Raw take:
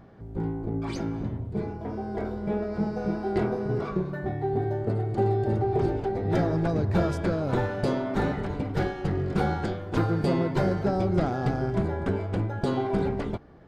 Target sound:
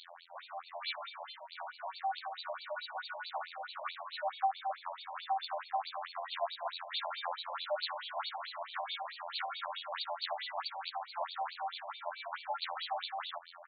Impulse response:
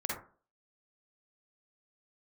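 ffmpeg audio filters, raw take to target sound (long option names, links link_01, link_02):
-filter_complex "[0:a]highshelf=frequency=2400:gain=7,acrossover=split=150|510[link_01][link_02][link_03];[link_01]acompressor=threshold=-41dB:ratio=4[link_04];[link_02]acompressor=threshold=-32dB:ratio=4[link_05];[link_03]acompressor=threshold=-40dB:ratio=4[link_06];[link_04][link_05][link_06]amix=inputs=3:normalize=0,afftfilt=real='hypot(re,im)*cos(PI*b)':imag='0':win_size=2048:overlap=0.75,aeval=exprs='0.0668*(abs(mod(val(0)/0.0668+3,4)-2)-1)':channel_layout=same,aexciter=amount=6.5:drive=8:freq=3600,volume=33.5dB,asoftclip=hard,volume=-33.5dB,asplit=2[link_07][link_08];[link_08]aecho=0:1:1013|2026:0.0891|0.0223[link_09];[link_07][link_09]amix=inputs=2:normalize=0,afftfilt=real='re*between(b*sr/1024,730*pow(3300/730,0.5+0.5*sin(2*PI*4.6*pts/sr))/1.41,730*pow(3300/730,0.5+0.5*sin(2*PI*4.6*pts/sr))*1.41)':imag='im*between(b*sr/1024,730*pow(3300/730,0.5+0.5*sin(2*PI*4.6*pts/sr))/1.41,730*pow(3300/730,0.5+0.5*sin(2*PI*4.6*pts/sr))*1.41)':win_size=1024:overlap=0.75,volume=13.5dB"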